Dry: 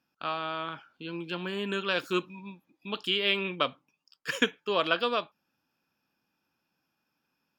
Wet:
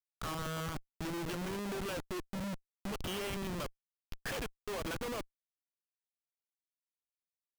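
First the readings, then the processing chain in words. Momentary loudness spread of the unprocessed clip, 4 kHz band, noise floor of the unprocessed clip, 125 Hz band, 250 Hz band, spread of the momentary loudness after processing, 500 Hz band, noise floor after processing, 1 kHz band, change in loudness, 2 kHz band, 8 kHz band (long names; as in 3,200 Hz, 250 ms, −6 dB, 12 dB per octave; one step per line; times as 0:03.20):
15 LU, −13.5 dB, −81 dBFS, +1.0 dB, −4.5 dB, 6 LU, −9.0 dB, below −85 dBFS, −9.5 dB, −9.5 dB, −12.0 dB, +4.0 dB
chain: downward compressor 16 to 1, threshold −36 dBFS, peak gain reduction 18 dB
comparator with hysteresis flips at −44.5 dBFS
level +6.5 dB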